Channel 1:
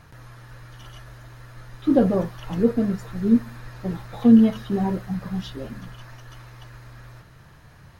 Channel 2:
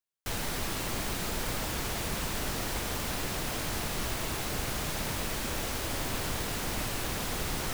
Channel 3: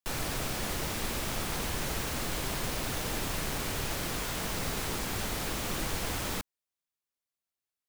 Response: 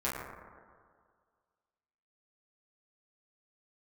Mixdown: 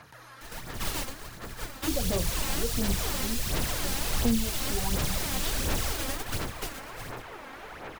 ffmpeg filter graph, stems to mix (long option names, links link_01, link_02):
-filter_complex "[0:a]highpass=frequency=510:poles=1,volume=0.5dB,asplit=2[link_01][link_02];[1:a]adelay=150,volume=3dB[link_03];[2:a]acrossover=split=340 2700:gain=0.178 1 0.0794[link_04][link_05][link_06];[link_04][link_05][link_06]amix=inputs=3:normalize=0,acontrast=37,adelay=2400,volume=-11dB[link_07];[link_02]apad=whole_len=347547[link_08];[link_03][link_08]sidechaingate=range=-33dB:threshold=-47dB:ratio=16:detection=peak[link_09];[link_01][link_09][link_07]amix=inputs=3:normalize=0,acrossover=split=120|3000[link_10][link_11][link_12];[link_11]acompressor=threshold=-35dB:ratio=4[link_13];[link_10][link_13][link_12]amix=inputs=3:normalize=0,aphaser=in_gain=1:out_gain=1:delay=3.8:decay=0.51:speed=1.4:type=sinusoidal"